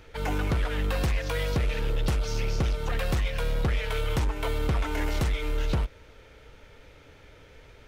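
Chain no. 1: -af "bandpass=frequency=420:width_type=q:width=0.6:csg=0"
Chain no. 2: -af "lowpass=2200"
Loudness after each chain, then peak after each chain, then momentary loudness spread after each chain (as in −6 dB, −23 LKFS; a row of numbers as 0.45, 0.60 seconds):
−35.0, −29.5 LKFS; −18.5, −19.0 dBFS; 3, 2 LU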